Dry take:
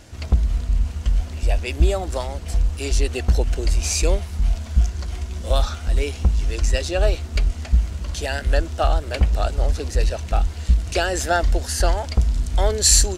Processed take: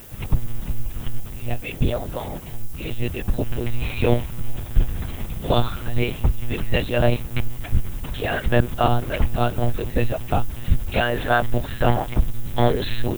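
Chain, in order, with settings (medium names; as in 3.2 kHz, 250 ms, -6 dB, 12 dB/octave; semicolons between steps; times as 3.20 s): 1.20–3.43 s: flange 1.1 Hz, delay 1.2 ms, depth 5.7 ms, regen -60%; hum notches 50/100/150/200/250 Hz; monotone LPC vocoder at 8 kHz 120 Hz; added noise violet -45 dBFS; trim +1 dB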